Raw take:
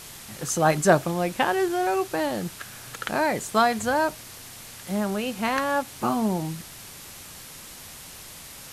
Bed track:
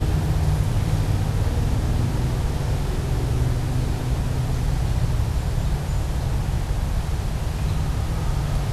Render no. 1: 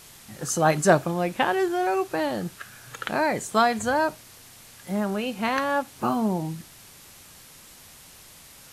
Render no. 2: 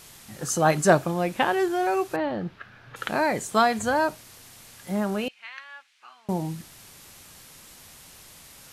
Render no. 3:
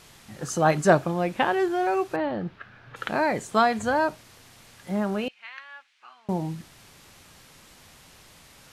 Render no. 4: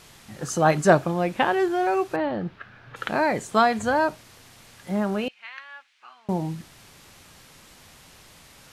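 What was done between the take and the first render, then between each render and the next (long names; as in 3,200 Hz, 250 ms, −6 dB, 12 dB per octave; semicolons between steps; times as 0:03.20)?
noise reduction from a noise print 6 dB
0:02.16–0:02.96: high-frequency loss of the air 310 metres; 0:05.28–0:06.29: four-pole ladder band-pass 2,700 Hz, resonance 30%
high-shelf EQ 7,000 Hz −11.5 dB
level +1.5 dB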